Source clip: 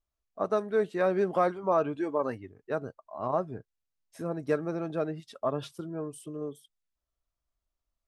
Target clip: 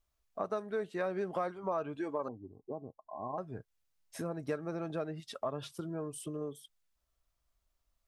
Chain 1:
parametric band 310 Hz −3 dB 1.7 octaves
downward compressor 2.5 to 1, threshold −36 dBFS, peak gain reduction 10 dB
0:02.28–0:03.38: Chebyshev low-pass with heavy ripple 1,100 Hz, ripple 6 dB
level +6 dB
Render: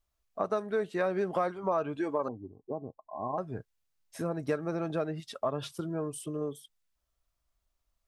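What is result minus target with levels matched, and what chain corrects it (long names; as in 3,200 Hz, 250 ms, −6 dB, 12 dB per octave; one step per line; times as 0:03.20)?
downward compressor: peak gain reduction −5 dB
parametric band 310 Hz −3 dB 1.7 octaves
downward compressor 2.5 to 1, threshold −44.5 dBFS, peak gain reduction 15.5 dB
0:02.28–0:03.38: Chebyshev low-pass with heavy ripple 1,100 Hz, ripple 6 dB
level +6 dB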